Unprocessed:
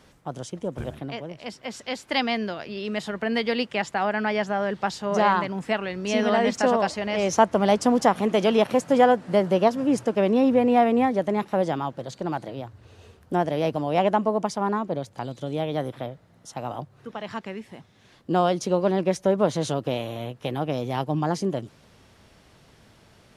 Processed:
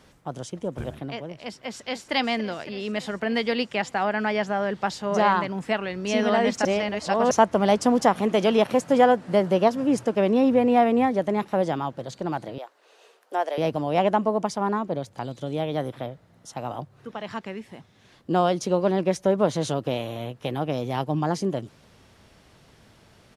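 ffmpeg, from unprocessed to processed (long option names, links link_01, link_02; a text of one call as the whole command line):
ffmpeg -i in.wav -filter_complex "[0:a]asplit=2[link_01][link_02];[link_02]afade=type=in:start_time=1.58:duration=0.01,afade=type=out:start_time=2.14:duration=0.01,aecho=0:1:280|560|840|1120|1400|1680|1960|2240|2520|2800|3080|3360:0.237137|0.18971|0.151768|0.121414|0.0971315|0.0777052|0.0621641|0.0497313|0.039785|0.031828|0.0254624|0.0203699[link_03];[link_01][link_03]amix=inputs=2:normalize=0,asettb=1/sr,asplit=3[link_04][link_05][link_06];[link_04]atrim=end=12.584[link_07];[link_05]atrim=start=12.58:end=13.58,asetpts=PTS-STARTPTS,afade=type=in:duration=0.004:curve=qsin,afade=type=out:start_time=0.996:duration=0.004:curve=qsin,highpass=frequency=460:width=0.5412,highpass=frequency=460:width=1.3066[link_08];[link_06]atrim=start=13.576[link_09];[link_07][link_08]acrossfade=duration=0.004:curve1=hsin:curve2=qsin[link_10];[link_10][link_09]acrossfade=duration=0.004:curve1=qsin:curve2=hsin,asplit=3[link_11][link_12][link_13];[link_11]atrim=end=6.652[link_14];[link_12]atrim=start=6.648:end=7.312,asetpts=PTS-STARTPTS,areverse[link_15];[link_13]atrim=start=7.308[link_16];[link_14][link_15]acrossfade=duration=0.004:curve1=hsin:curve2=hsin[link_17];[link_17][link_16]acrossfade=duration=0.004:curve1=hsin:curve2=hsin" out.wav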